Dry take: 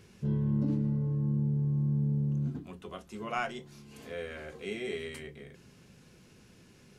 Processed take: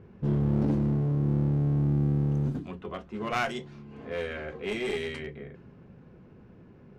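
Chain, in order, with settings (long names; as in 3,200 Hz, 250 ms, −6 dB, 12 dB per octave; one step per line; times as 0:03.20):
low-pass that shuts in the quiet parts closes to 900 Hz, open at −30.5 dBFS
asymmetric clip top −35.5 dBFS
level +6.5 dB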